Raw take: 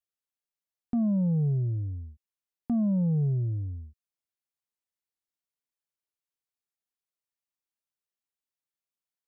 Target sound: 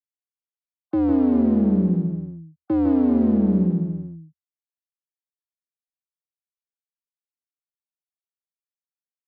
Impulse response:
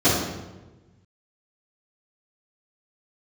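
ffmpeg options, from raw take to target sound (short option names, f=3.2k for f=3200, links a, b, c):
-filter_complex "[0:a]afftfilt=real='re*gte(hypot(re,im),0.00355)':imag='im*gte(hypot(re,im),0.00355)':win_size=1024:overlap=0.75,aeval=exprs='clip(val(0),-1,0.0158)':c=same,alimiter=level_in=4dB:limit=-24dB:level=0:latency=1,volume=-4dB,equalizer=f=210:w=0.37:g=7.5,afreqshift=81,asplit=2[a][b];[b]aecho=0:1:154|383:0.631|0.237[c];[a][c]amix=inputs=2:normalize=0,aresample=11025,aresample=44100,volume=7.5dB"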